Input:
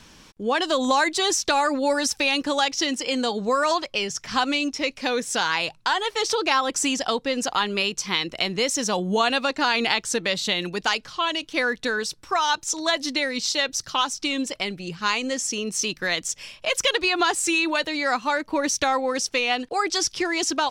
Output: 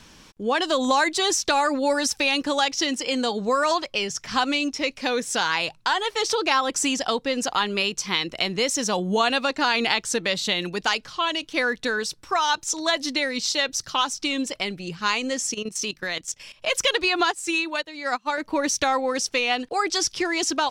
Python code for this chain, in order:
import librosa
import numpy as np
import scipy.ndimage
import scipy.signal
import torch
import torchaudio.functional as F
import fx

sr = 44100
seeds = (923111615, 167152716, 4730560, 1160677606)

y = fx.level_steps(x, sr, step_db=14, at=(15.54, 16.62))
y = fx.upward_expand(y, sr, threshold_db=-35.0, expansion=2.5, at=(17.24, 18.38))